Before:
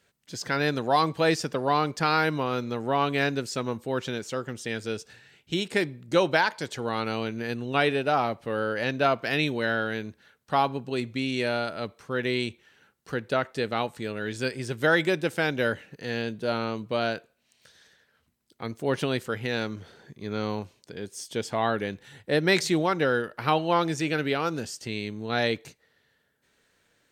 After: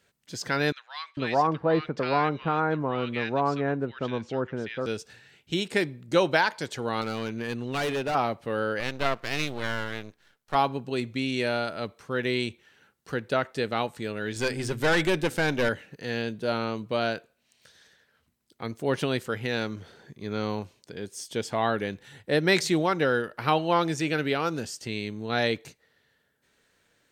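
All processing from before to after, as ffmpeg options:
-filter_complex "[0:a]asettb=1/sr,asplit=3[a][b][c];[a]atrim=end=0.724[d];[b]atrim=start=0.72:end=4.86,asetpts=PTS-STARTPTS,afade=t=in:d=0.004:c=qsin,afade=t=out:st=4.136:d=0.004:c=qsin,lowpass=2.8k,acrossover=split=1600[e][f];[e]adelay=450[g];[g][f]amix=inputs=2:normalize=0,atrim=end_sample=182574[h];[c]atrim=start=4.856[i];[d][h]acrossfade=d=0.004:c1=hsin:c2=qsin[j];[j][i]acrossfade=d=0.004:c1=qsin:c2=hsin,asettb=1/sr,asplit=3[k][l][m];[k]atrim=end=7.014[n];[l]atrim=start=7.01:end=8.15,asetpts=PTS-STARTPTS,afade=t=in:d=0.004:c=qsin,afade=t=out:st=1.136:d=0.004:c=qsin,highshelf=f=9.4k:g=11,adynamicsmooth=sensitivity=6.5:basefreq=7.8k,volume=25.5dB,asoftclip=hard,volume=-25.5dB[o];[m]atrim=start=8.146[p];[n][o]acrossfade=d=0.004:c1=hsin:c2=qsin[q];[q][p]acrossfade=d=0.004:c1=qsin:c2=hsin,asettb=1/sr,asplit=3[r][s][t];[r]atrim=end=8.804[u];[s]atrim=start=8.8:end=10.55,asetpts=PTS-STARTPTS,afade=t=in:d=0.004:c=qsin,afade=t=out:st=1.746:d=0.004:c=qsin,lowshelf=f=280:g=-6.5,aeval=exprs='max(val(0),0)':c=same[v];[t]atrim=start=10.546[w];[u][v]acrossfade=d=0.004:c1=hsin:c2=qsin[x];[x][w]acrossfade=d=0.004:c1=qsin:c2=hsin,asettb=1/sr,asplit=3[y][z][aa];[y]atrim=end=14.364[ab];[z]atrim=start=14.36:end=15.69,asetpts=PTS-STARTPTS,afade=t=in:d=0.004:c=qsin,afade=t=out:st=1.326:d=0.004:c=qsin,bandreject=f=128.8:t=h:w=4,bandreject=f=257.6:t=h:w=4,acontrast=29,aeval=exprs='(tanh(8.91*val(0)+0.4)-tanh(0.4))/8.91':c=same[ac];[aa]atrim=start=15.686[ad];[ab][ac]acrossfade=d=0.004:c1=hsin:c2=qsin[ae];[ae][ad]acrossfade=d=0.004:c1=qsin:c2=hsin"

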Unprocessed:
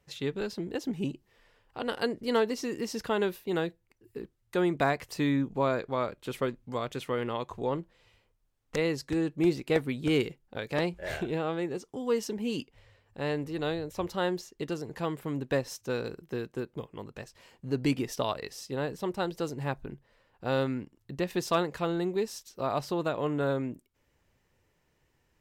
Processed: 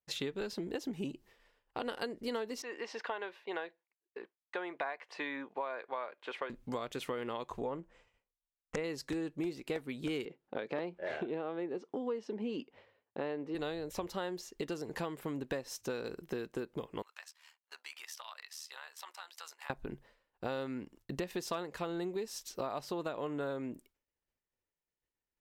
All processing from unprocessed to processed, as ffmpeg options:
-filter_complex "[0:a]asettb=1/sr,asplit=3[a][b][c];[a]atrim=end=2.624[d];[b]atrim=start=2.62:end=6.5,asetpts=PTS-STARTPTS,afade=t=in:d=0.004:c=qsin,afade=t=out:st=3.876:d=0.004:c=qsin,highpass=750,lowpass=2.3k,bandreject=f=1.3k:w=9[e];[c]atrim=start=6.496[f];[d][e]acrossfade=d=0.004:c1=hsin:c2=qsin[g];[g][f]acrossfade=d=0.004:c1=qsin:c2=hsin,asettb=1/sr,asplit=3[h][i][j];[h]atrim=end=7.614[k];[i]atrim=start=7.61:end=8.84,asetpts=PTS-STARTPTS,afade=t=in:d=0.004:c=qsin,afade=t=out:st=1.226:d=0.004:c=qsin,lowpass=f=8.3k:w=0.5412,lowpass=f=8.3k:w=1.3066,equalizer=f=4.1k:w=1.8:g=-12,bandreject=f=360:w=10[l];[j]atrim=start=8.836[m];[k][l]acrossfade=d=0.004:c1=hsin:c2=qsin[n];[n][m]acrossfade=d=0.004:c1=qsin:c2=hsin,asettb=1/sr,asplit=3[o][p][q];[o]atrim=end=10.254[r];[p]atrim=start=10.25:end=13.55,asetpts=PTS-STARTPTS,afade=t=in:d=0.004:c=qsin,afade=t=out:st=3.296:d=0.004:c=qsin,highpass=210,lowpass=3.7k,tiltshelf=f=1.2k:g=4[s];[q]atrim=start=13.546[t];[r][s]acrossfade=d=0.004:c1=hsin:c2=qsin[u];[u][t]acrossfade=d=0.004:c1=qsin:c2=hsin,asettb=1/sr,asplit=3[v][w][x];[v]atrim=end=17.024[y];[w]atrim=start=17.02:end=19.7,asetpts=PTS-STARTPTS,afade=t=in:d=0.004:c=qsin,afade=t=out:st=2.676:d=0.004:c=qsin,highpass=f=1k:w=0.5412,highpass=f=1k:w=1.3066,acompressor=threshold=-46dB:ratio=6:attack=3.2:release=140:knee=1:detection=peak,tremolo=f=77:d=0.71[z];[x]atrim=start=19.696[aa];[y][z]acrossfade=d=0.004:c1=hsin:c2=qsin[ab];[ab][aa]acrossfade=d=0.004:c1=qsin:c2=hsin,agate=range=-33dB:threshold=-54dB:ratio=3:detection=peak,equalizer=f=110:w=0.98:g=-8.5,acompressor=threshold=-41dB:ratio=6,volume=5.5dB"

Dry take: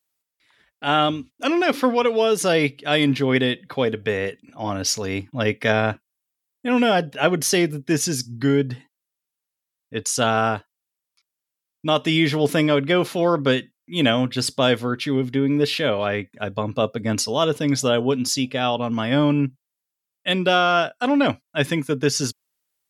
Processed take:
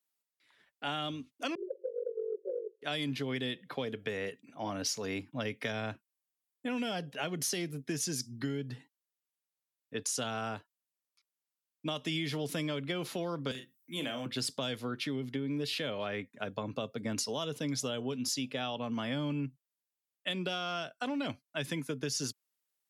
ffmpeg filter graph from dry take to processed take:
-filter_complex "[0:a]asettb=1/sr,asplit=3[a][b][c];[a]atrim=end=1.554[d];[b]atrim=start=1.55:end=2.82,asetpts=PTS-STARTPTS,afade=t=in:d=0.004:c=qsin,afade=t=out:st=1.266:d=0.004:c=qsin,tremolo=f=47:d=0.824,asuperpass=centerf=450:order=20:qfactor=2.2[e];[c]atrim=start=2.816[f];[d][e]acrossfade=d=0.004:c1=hsin:c2=qsin[g];[g][f]acrossfade=d=0.004:c1=qsin:c2=hsin,asettb=1/sr,asplit=3[h][i][j];[h]atrim=end=13.514[k];[i]atrim=start=13.51:end=14.26,asetpts=PTS-STARTPTS,afade=t=in:d=0.004:c=qsin,afade=t=out:st=0.746:d=0.004:c=qsin,aemphasis=mode=production:type=50fm,acrossover=split=470|2000[l][m][n];[l]acompressor=threshold=-32dB:ratio=4[o];[m]acompressor=threshold=-33dB:ratio=4[p];[n]acompressor=threshold=-35dB:ratio=4[q];[o][p][q]amix=inputs=3:normalize=0,asplit=2[r][s];[s]adelay=38,volume=-7.5dB[t];[r][t]amix=inputs=2:normalize=0,atrim=end_sample=33075[u];[j]atrim=start=14.256[v];[k][u]acrossfade=d=0.004:c1=hsin:c2=qsin[w];[w][v]acrossfade=d=0.004:c1=qsin:c2=hsin,acrossover=split=180|3000[x][y][z];[y]acompressor=threshold=-25dB:ratio=6[aa];[x][aa][z]amix=inputs=3:normalize=0,highpass=140,acompressor=threshold=-23dB:ratio=6,volume=-7.5dB"

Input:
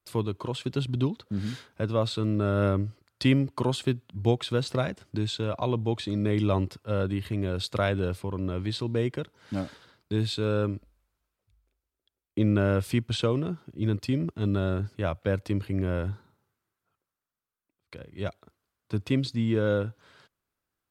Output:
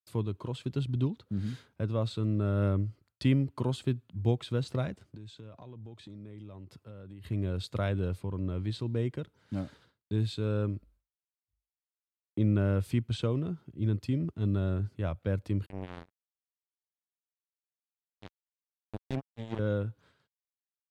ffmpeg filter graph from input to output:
-filter_complex "[0:a]asettb=1/sr,asplit=3[a][b][c];[a]atrim=end=5.074[d];[b]atrim=start=5.07:end=7.24,asetpts=PTS-STARTPTS,afade=t=in:d=0.004:c=qsin,afade=t=out:st=2.166:d=0.004:c=qsin,highpass=83,acompressor=threshold=-40dB:ratio=6:attack=3.2:release=140:knee=1:detection=peak[e];[c]atrim=start=7.236[f];[d][e]acrossfade=d=0.004:c1=hsin:c2=qsin[g];[g][f]acrossfade=d=0.004:c1=qsin:c2=hsin,asettb=1/sr,asplit=3[h][i][j];[h]atrim=end=15.664[k];[i]atrim=start=15.66:end=19.59,asetpts=PTS-STARTPTS,afade=t=in:d=0.004:c=qsin,afade=t=out:st=3.926:d=0.004:c=qsin,flanger=delay=2:depth=4.1:regen=-34:speed=1.9:shape=triangular,acrusher=bits=3:mix=0:aa=0.5[l];[j]atrim=start=19.586[m];[k][l]acrossfade=d=0.004:c1=hsin:c2=qsin[n];[n][m]acrossfade=d=0.004:c1=qsin:c2=hsin,equalizer=f=88:w=0.32:g=8,agate=range=-33dB:threshold=-47dB:ratio=3:detection=peak,equalizer=f=5.3k:w=5.4:g=-2,volume=-9dB"

